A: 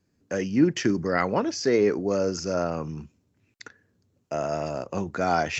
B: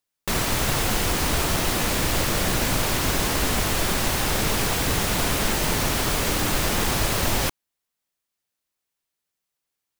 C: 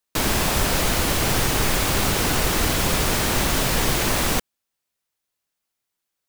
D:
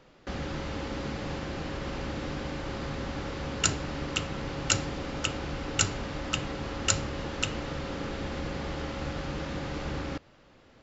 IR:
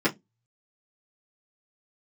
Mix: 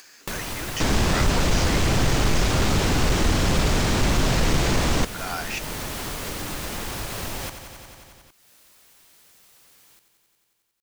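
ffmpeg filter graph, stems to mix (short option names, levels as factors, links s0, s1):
-filter_complex "[0:a]highpass=1400,volume=0.841[s0];[1:a]volume=0.251,asplit=2[s1][s2];[s2]volume=0.282[s3];[2:a]volume=9.44,asoftclip=hard,volume=0.106,lowpass=f=7700:w=0.5412,lowpass=f=7700:w=1.3066,lowshelf=f=370:g=7.5,adelay=650,volume=0.891[s4];[s3]aecho=0:1:90|180|270|360|450|540|630|720|810:1|0.58|0.336|0.195|0.113|0.0656|0.0381|0.0221|0.0128[s5];[s0][s1][s4][s5]amix=inputs=4:normalize=0,acompressor=mode=upward:threshold=0.0631:ratio=2.5"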